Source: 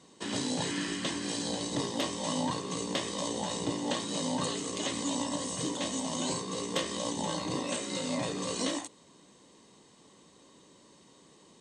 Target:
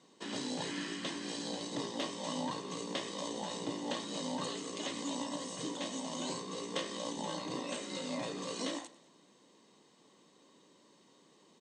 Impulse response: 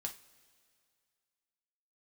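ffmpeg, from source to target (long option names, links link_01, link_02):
-filter_complex "[0:a]highpass=170,lowpass=6900,asplit=2[link_01][link_02];[link_02]aecho=0:1:98|196|294|392:0.1|0.053|0.0281|0.0149[link_03];[link_01][link_03]amix=inputs=2:normalize=0,volume=-5dB"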